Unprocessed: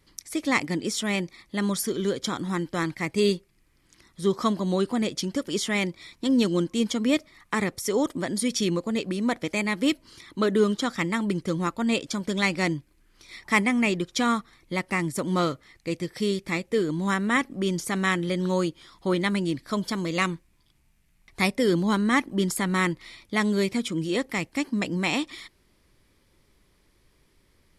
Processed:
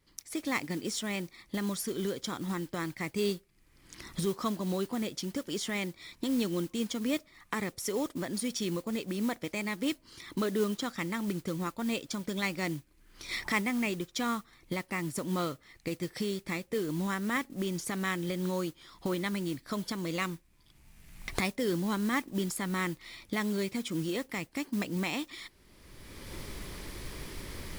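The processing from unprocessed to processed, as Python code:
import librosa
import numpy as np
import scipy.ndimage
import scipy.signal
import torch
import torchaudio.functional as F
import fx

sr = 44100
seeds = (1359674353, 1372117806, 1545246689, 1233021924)

y = fx.recorder_agc(x, sr, target_db=-16.5, rise_db_per_s=26.0, max_gain_db=30)
y = fx.mod_noise(y, sr, seeds[0], snr_db=18)
y = y * 10.0 ** (-8.5 / 20.0)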